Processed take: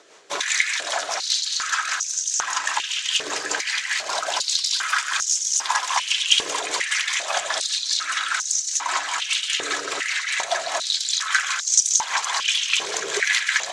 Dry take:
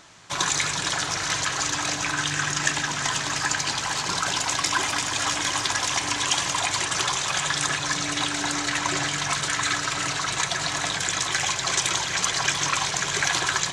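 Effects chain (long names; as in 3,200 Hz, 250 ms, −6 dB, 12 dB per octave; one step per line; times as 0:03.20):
rotating-speaker cabinet horn 5 Hz
high-pass on a step sequencer 2.5 Hz 440–6,100 Hz
level +1 dB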